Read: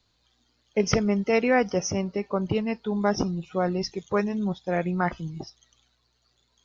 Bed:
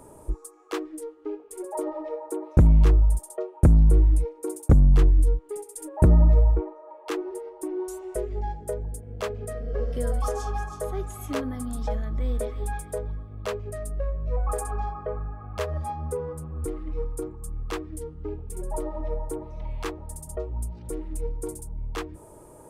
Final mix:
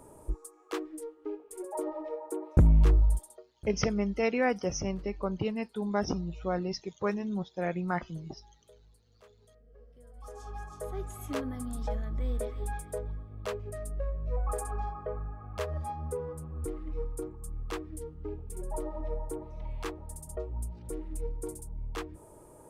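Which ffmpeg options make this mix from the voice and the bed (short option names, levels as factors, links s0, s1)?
-filter_complex "[0:a]adelay=2900,volume=0.501[s0];[1:a]volume=8.41,afade=t=out:st=3.14:d=0.29:silence=0.0668344,afade=t=in:st=10.13:d=1:silence=0.0707946[s1];[s0][s1]amix=inputs=2:normalize=0"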